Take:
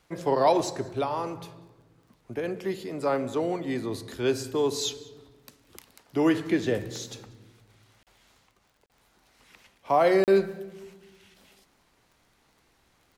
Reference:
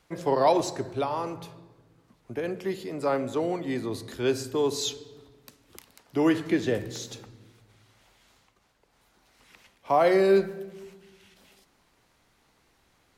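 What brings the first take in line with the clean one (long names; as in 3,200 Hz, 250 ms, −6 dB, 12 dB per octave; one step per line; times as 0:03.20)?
click removal
repair the gap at 0:08.03/0:08.86/0:10.24, 38 ms
echo removal 190 ms −24 dB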